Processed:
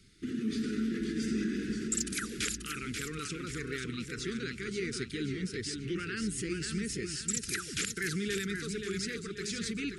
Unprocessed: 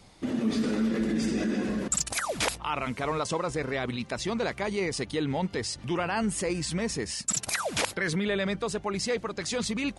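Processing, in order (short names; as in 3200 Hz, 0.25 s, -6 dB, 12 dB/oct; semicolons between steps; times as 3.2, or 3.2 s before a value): elliptic band-stop 410–1400 Hz, stop band 40 dB; warbling echo 0.532 s, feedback 42%, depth 98 cents, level -6 dB; gain -5 dB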